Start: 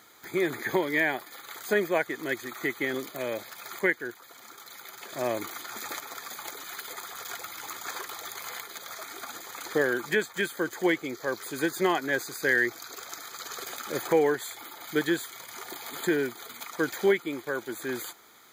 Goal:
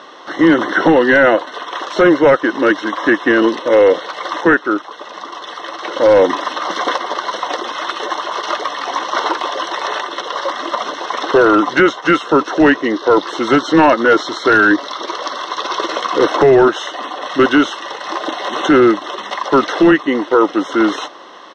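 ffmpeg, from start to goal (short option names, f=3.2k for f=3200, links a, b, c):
-af "asetrate=37926,aresample=44100,highpass=290,equalizer=f=330:t=q:w=4:g=4,equalizer=f=520:t=q:w=4:g=9,equalizer=f=1k:t=q:w=4:g=5,equalizer=f=1.7k:t=q:w=4:g=-3,equalizer=f=2.8k:t=q:w=4:g=-4,lowpass=f=4.4k:w=0.5412,lowpass=f=4.4k:w=1.3066,apsyclip=22.5dB,volume=-4dB"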